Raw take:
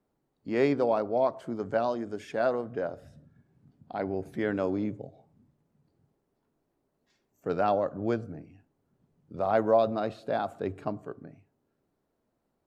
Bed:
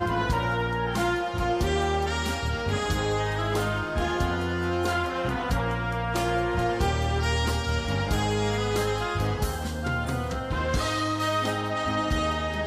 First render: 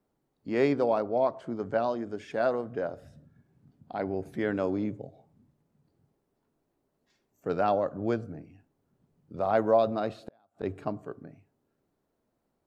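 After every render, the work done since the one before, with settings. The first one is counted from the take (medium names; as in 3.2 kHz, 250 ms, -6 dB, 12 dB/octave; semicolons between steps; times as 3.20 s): 1.01–2.31 s: distance through air 51 m; 10.18–10.63 s: inverted gate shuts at -25 dBFS, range -36 dB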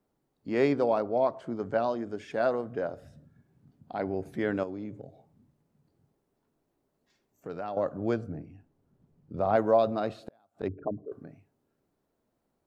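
4.63–7.77 s: compression 2:1, threshold -40 dBFS; 8.28–9.56 s: tilt EQ -1.5 dB/octave; 10.68–11.12 s: resonances exaggerated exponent 3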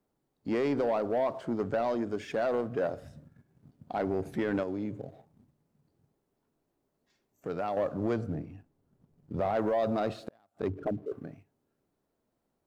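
peak limiter -21.5 dBFS, peak gain reduction 9.5 dB; waveshaping leveller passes 1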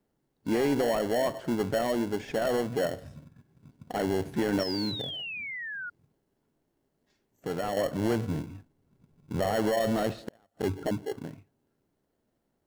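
in parallel at -5 dB: sample-and-hold 36×; 4.59–5.90 s: on the sum: painted sound fall 1.4–5.6 kHz -37 dBFS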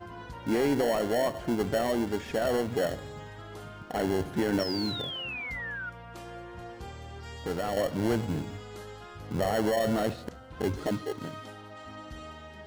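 add bed -17.5 dB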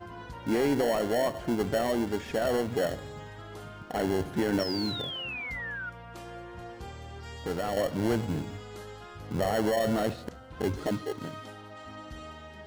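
no audible change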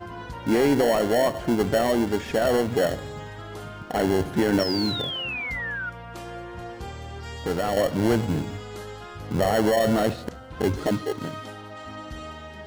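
trim +6 dB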